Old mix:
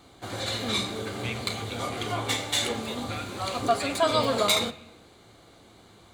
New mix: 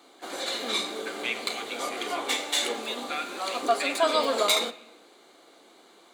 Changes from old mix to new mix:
speech +5.5 dB; master: add HPF 280 Hz 24 dB/oct

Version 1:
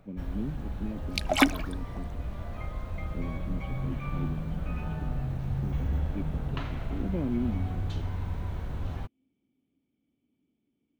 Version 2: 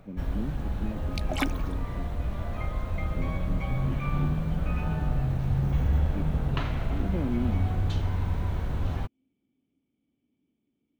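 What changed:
first sound +5.0 dB; second sound -7.5 dB

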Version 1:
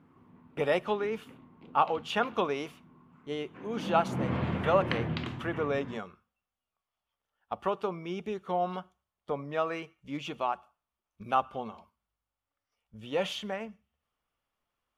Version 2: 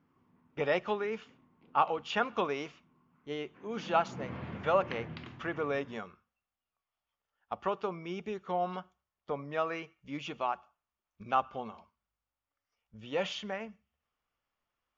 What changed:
background -8.0 dB; master: add rippled Chebyshev low-pass 7000 Hz, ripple 3 dB

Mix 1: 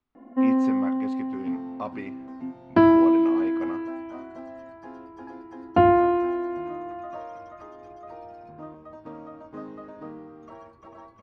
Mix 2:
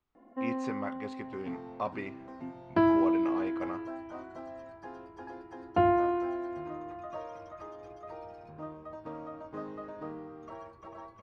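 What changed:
first sound -7.0 dB; master: add bell 250 Hz -9 dB 0.31 oct

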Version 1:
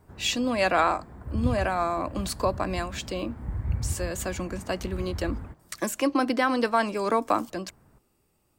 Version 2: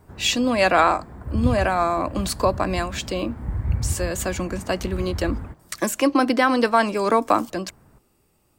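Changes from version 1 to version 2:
speech +5.5 dB; background +5.0 dB

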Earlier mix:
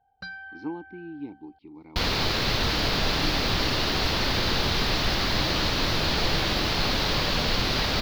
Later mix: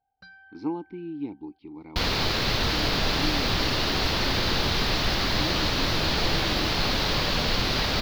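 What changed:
speech +4.0 dB; first sound -11.0 dB

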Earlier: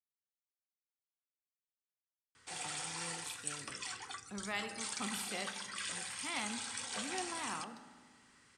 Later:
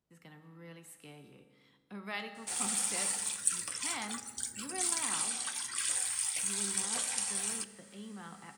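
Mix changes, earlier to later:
speech: entry -2.40 s; background: remove air absorption 100 m

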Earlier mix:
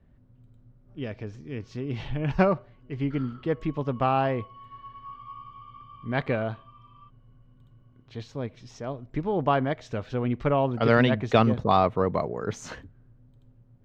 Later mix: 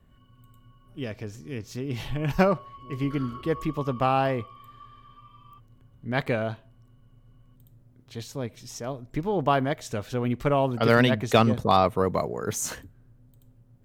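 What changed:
first sound: entry -1.50 s; second sound +10.5 dB; master: remove air absorption 180 m

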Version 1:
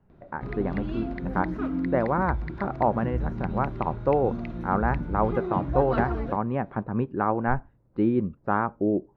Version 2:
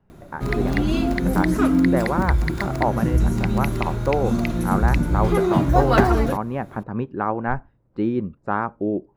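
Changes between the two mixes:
background +10.5 dB; master: remove air absorption 290 m

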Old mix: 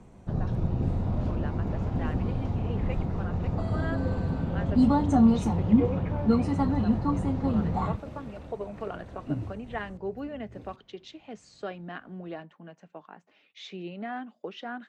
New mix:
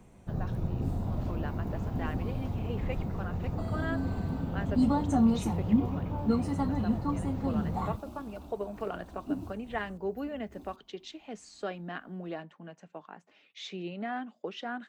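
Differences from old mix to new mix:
first sound -4.5 dB; second sound: add fixed phaser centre 500 Hz, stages 6; master: remove air absorption 64 m

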